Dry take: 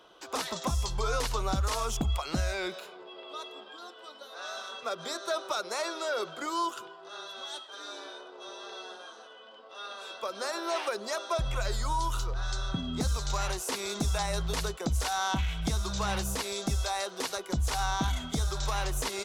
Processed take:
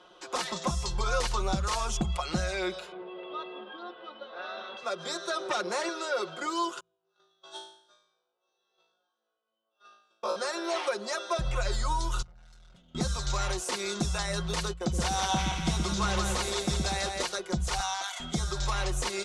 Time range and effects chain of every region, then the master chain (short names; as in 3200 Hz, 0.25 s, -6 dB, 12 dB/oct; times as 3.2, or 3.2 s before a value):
2.92–4.77 LPF 3400 Hz 24 dB/oct + low shelf 310 Hz +11 dB
5.4–5.89 low shelf 490 Hz +11.5 dB + core saturation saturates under 1800 Hz
6.8–10.36 bell 2000 Hz -9.5 dB 0.34 oct + gate -39 dBFS, range -39 dB + flutter echo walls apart 3.1 m, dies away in 0.62 s
12.22–12.95 expander -22 dBFS + tube stage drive 56 dB, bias 0.8 + comb 1.4 ms, depth 34%
14.73–17.23 gate -39 dBFS, range -16 dB + split-band echo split 470 Hz, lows 0.121 s, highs 0.172 s, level -4 dB
17.8–18.2 HPF 670 Hz 24 dB/oct + high shelf 8400 Hz +6 dB
whole clip: LPF 9800 Hz 24 dB/oct; comb 5.6 ms, depth 60%; de-hum 56.39 Hz, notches 3